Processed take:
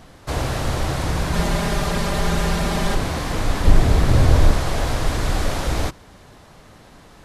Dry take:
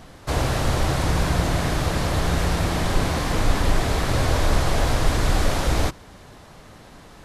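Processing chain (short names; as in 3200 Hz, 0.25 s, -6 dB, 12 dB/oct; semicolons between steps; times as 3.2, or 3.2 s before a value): 1.33–2.95 comb 5 ms, depth 99%; 3.65–4.51 low shelf 350 Hz +9.5 dB; gain -1 dB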